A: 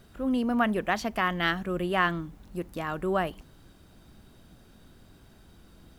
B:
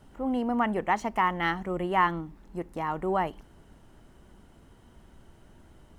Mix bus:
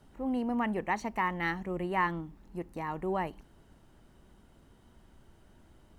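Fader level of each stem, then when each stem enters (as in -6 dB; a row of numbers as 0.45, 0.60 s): -16.0, -5.0 dB; 0.00, 0.00 s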